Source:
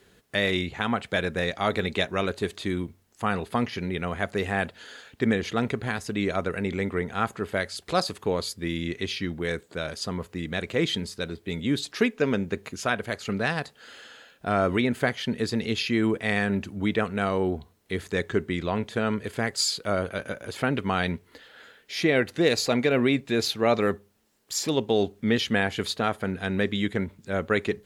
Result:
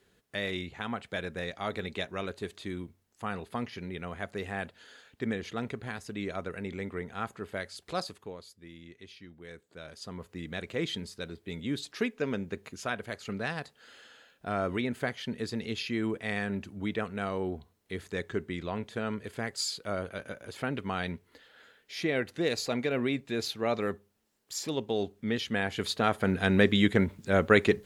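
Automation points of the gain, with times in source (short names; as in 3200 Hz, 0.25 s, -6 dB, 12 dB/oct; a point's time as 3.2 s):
8.03 s -9 dB
8.44 s -20 dB
9.34 s -20 dB
10.38 s -7.5 dB
25.48 s -7.5 dB
26.38 s +3 dB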